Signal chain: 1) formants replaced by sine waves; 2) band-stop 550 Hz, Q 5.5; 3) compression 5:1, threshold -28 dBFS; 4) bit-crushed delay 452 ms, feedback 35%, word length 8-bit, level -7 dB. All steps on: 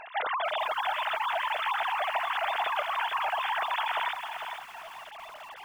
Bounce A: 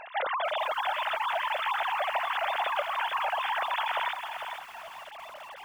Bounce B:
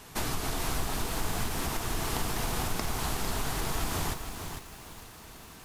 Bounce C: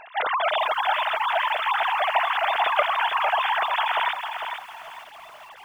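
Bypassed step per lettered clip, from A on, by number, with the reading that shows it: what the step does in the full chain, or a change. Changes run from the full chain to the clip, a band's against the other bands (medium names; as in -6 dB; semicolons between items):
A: 2, 500 Hz band +1.5 dB; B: 1, 1 kHz band -6.5 dB; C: 3, crest factor change +4.0 dB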